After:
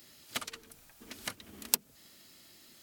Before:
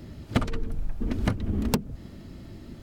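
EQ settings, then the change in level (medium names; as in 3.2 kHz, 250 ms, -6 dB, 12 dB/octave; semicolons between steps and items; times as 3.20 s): differentiator; +6.5 dB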